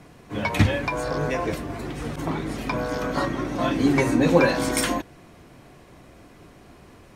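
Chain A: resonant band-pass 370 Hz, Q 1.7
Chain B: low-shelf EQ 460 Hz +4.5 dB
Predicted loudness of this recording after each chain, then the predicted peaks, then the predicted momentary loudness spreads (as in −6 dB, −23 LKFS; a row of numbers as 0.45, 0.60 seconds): −29.0, −21.5 LKFS; −8.5, −1.5 dBFS; 14, 12 LU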